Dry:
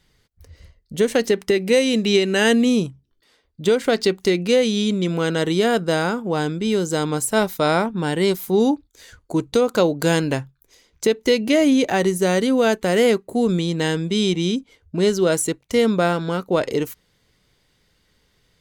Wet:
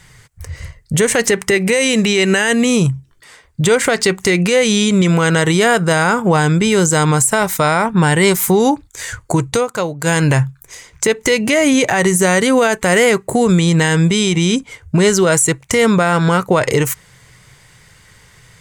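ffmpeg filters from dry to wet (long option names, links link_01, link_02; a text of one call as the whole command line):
ffmpeg -i in.wav -filter_complex "[0:a]asplit=3[link_01][link_02][link_03];[link_01]atrim=end=9.67,asetpts=PTS-STARTPTS,afade=type=out:start_time=9.34:duration=0.33:silence=0.158489[link_04];[link_02]atrim=start=9.67:end=10.04,asetpts=PTS-STARTPTS,volume=-16dB[link_05];[link_03]atrim=start=10.04,asetpts=PTS-STARTPTS,afade=type=in:duration=0.33:silence=0.158489[link_06];[link_04][link_05][link_06]concat=n=3:v=0:a=1,equalizer=frequency=125:width_type=o:width=1:gain=12,equalizer=frequency=250:width_type=o:width=1:gain=-6,equalizer=frequency=1000:width_type=o:width=1:gain=6,equalizer=frequency=2000:width_type=o:width=1:gain=8,equalizer=frequency=4000:width_type=o:width=1:gain=-4,equalizer=frequency=8000:width_type=o:width=1:gain=12,acompressor=threshold=-19dB:ratio=6,alimiter=level_in=15dB:limit=-1dB:release=50:level=0:latency=1,volume=-3dB" out.wav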